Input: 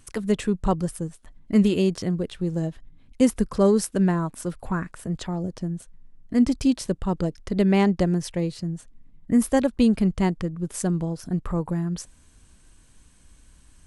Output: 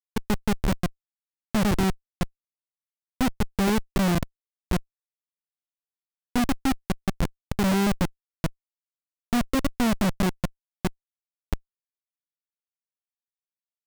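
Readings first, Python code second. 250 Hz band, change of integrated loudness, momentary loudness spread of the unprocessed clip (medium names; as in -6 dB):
-5.0 dB, -3.0 dB, 12 LU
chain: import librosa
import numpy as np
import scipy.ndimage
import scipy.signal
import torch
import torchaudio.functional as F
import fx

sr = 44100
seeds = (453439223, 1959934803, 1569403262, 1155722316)

y = fx.delta_mod(x, sr, bps=16000, step_db=-31.5)
y = fx.schmitt(y, sr, flips_db=-19.5)
y = y * librosa.db_to_amplitude(3.5)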